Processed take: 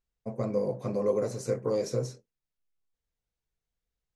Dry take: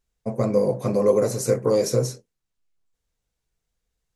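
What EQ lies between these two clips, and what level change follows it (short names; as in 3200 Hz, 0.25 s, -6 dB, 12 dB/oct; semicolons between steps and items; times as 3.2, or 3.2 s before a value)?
air absorption 54 m; -8.5 dB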